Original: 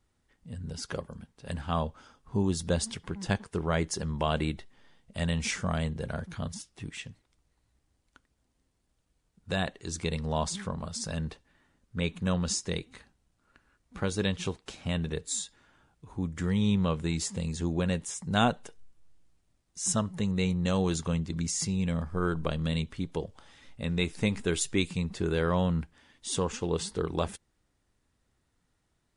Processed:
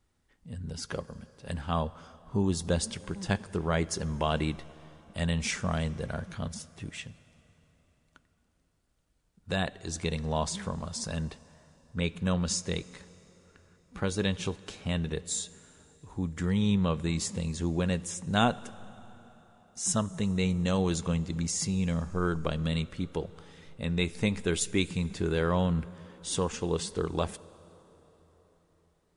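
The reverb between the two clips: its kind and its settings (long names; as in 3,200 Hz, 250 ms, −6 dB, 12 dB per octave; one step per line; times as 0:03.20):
dense smooth reverb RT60 4.4 s, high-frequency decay 0.7×, DRR 18.5 dB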